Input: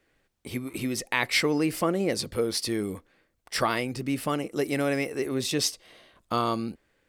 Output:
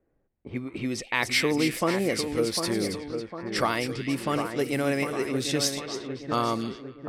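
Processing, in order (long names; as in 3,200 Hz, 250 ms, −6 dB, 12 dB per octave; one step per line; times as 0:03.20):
echo with a time of its own for lows and highs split 1,900 Hz, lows 752 ms, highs 276 ms, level −7 dB
low-pass that shuts in the quiet parts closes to 690 Hz, open at −23.5 dBFS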